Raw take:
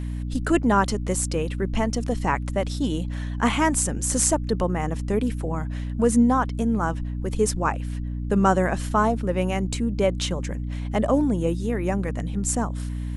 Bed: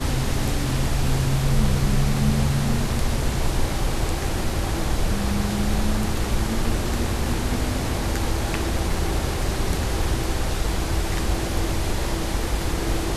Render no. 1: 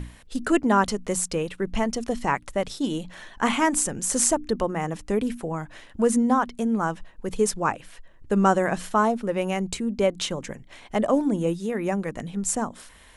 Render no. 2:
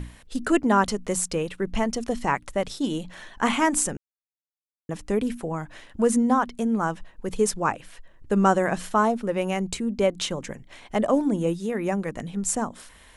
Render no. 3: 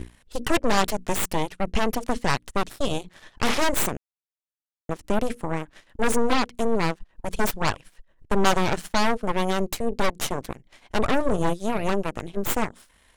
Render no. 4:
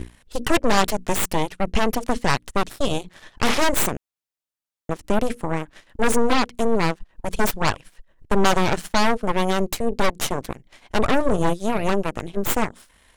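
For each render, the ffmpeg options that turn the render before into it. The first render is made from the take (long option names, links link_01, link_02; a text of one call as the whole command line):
ffmpeg -i in.wav -af "bandreject=frequency=60:width_type=h:width=6,bandreject=frequency=120:width_type=h:width=6,bandreject=frequency=180:width_type=h:width=6,bandreject=frequency=240:width_type=h:width=6,bandreject=frequency=300:width_type=h:width=6" out.wav
ffmpeg -i in.wav -filter_complex "[0:a]asplit=3[link_01][link_02][link_03];[link_01]atrim=end=3.97,asetpts=PTS-STARTPTS,afade=type=out:start_time=3.966:duration=0.004:curve=hsin[link_04];[link_02]atrim=start=3.97:end=4.89,asetpts=PTS-STARTPTS,volume=0[link_05];[link_03]atrim=start=4.89,asetpts=PTS-STARTPTS,afade=type=in:duration=0.004:curve=hsin[link_06];[link_04][link_05][link_06]concat=n=3:v=0:a=1" out.wav
ffmpeg -i in.wav -filter_complex "[0:a]asplit=2[link_01][link_02];[link_02]asoftclip=type=tanh:threshold=-20dB,volume=-6dB[link_03];[link_01][link_03]amix=inputs=2:normalize=0,aeval=exprs='0.501*(cos(1*acos(clip(val(0)/0.501,-1,1)))-cos(1*PI/2))+0.141*(cos(3*acos(clip(val(0)/0.501,-1,1)))-cos(3*PI/2))+0.01*(cos(5*acos(clip(val(0)/0.501,-1,1)))-cos(5*PI/2))+0.0891*(cos(8*acos(clip(val(0)/0.501,-1,1)))-cos(8*PI/2))':channel_layout=same" out.wav
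ffmpeg -i in.wav -af "volume=3dB,alimiter=limit=-2dB:level=0:latency=1" out.wav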